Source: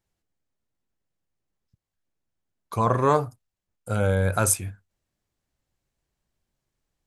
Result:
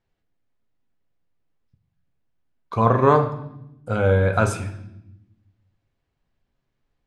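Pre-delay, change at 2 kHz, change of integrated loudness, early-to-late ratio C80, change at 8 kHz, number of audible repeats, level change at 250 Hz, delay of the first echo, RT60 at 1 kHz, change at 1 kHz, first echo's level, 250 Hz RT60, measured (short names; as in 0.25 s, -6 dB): 4 ms, +4.5 dB, +3.5 dB, 13.5 dB, -13.0 dB, none, +4.5 dB, none, 0.75 s, +4.0 dB, none, 1.5 s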